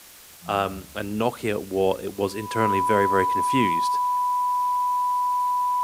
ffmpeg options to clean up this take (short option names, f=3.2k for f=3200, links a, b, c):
-af "adeclick=t=4,bandreject=f=990:w=30,afwtdn=0.005"